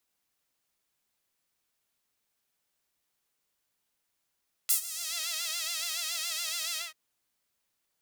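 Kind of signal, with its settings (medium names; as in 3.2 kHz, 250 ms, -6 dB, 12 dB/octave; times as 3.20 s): synth patch with vibrato E5, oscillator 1 saw, sub -13 dB, filter highpass, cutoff 2 kHz, Q 0.89, filter envelope 2.5 oct, filter decay 0.48 s, attack 14 ms, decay 0.10 s, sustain -19 dB, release 0.18 s, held 2.06 s, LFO 7.1 Hz, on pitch 92 cents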